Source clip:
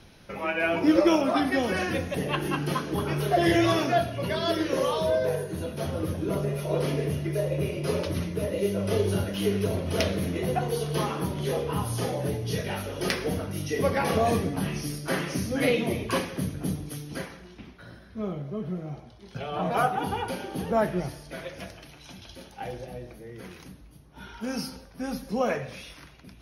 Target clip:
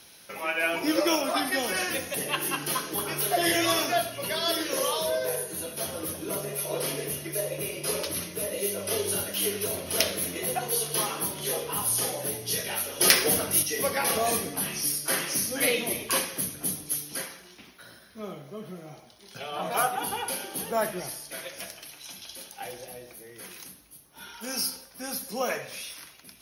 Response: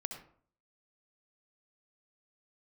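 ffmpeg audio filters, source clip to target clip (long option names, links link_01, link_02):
-filter_complex "[0:a]aemphasis=mode=production:type=riaa,asettb=1/sr,asplit=3[link_01][link_02][link_03];[link_01]atrim=end=13.004[link_04];[link_02]atrim=start=13:end=13.63,asetpts=PTS-STARTPTS,afade=type=in:duration=0.004:curve=qsin,afade=type=out:start_time=0.626:duration=0.004:curve=qsin,acontrast=67[link_05];[link_03]atrim=start=13.626[link_06];[link_04][link_05]acrossfade=duration=0.004:curve1=hsin:curve2=qsin[link_07];[link_07][link_06]acrossfade=duration=0.004:curve1=qsin:curve2=hsin,asplit=2[link_08][link_09];[1:a]atrim=start_sample=2205,afade=type=out:start_time=0.14:duration=0.01,atrim=end_sample=6615[link_10];[link_09][link_10]afir=irnorm=-1:irlink=0,volume=-3.5dB[link_11];[link_08][link_11]amix=inputs=2:normalize=0,volume=-5dB"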